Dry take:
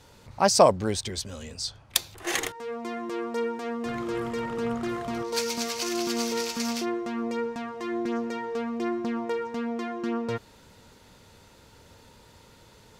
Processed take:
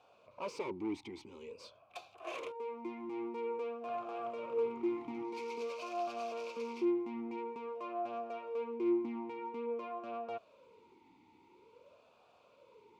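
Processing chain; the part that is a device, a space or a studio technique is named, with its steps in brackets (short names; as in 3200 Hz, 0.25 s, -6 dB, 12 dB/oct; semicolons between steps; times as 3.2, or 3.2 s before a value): talk box (tube stage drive 29 dB, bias 0.5; vowel sweep a-u 0.49 Hz); gain +5.5 dB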